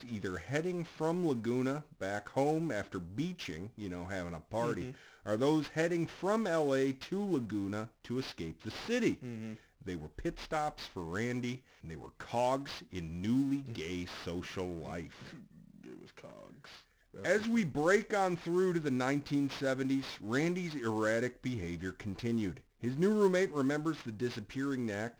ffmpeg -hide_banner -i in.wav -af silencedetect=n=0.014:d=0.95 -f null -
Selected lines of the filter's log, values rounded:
silence_start: 15.01
silence_end: 17.23 | silence_duration: 2.23